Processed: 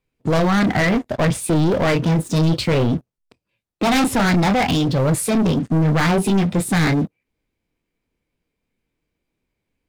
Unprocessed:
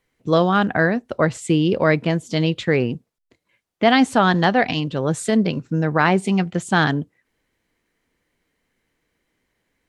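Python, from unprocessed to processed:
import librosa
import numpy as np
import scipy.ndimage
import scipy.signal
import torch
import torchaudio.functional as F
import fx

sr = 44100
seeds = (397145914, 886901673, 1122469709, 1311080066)

y = fx.chorus_voices(x, sr, voices=2, hz=0.62, base_ms=27, depth_ms=4.1, mix_pct=25)
y = 10.0 ** (-19.5 / 20.0) * np.tanh(y / 10.0 ** (-19.5 / 20.0))
y = fx.low_shelf(y, sr, hz=260.0, db=10.5)
y = fx.formant_shift(y, sr, semitones=3)
y = fx.dynamic_eq(y, sr, hz=380.0, q=0.89, threshold_db=-33.0, ratio=4.0, max_db=-3)
y = fx.leveller(y, sr, passes=3)
y = y * 10.0 ** (-2.0 / 20.0)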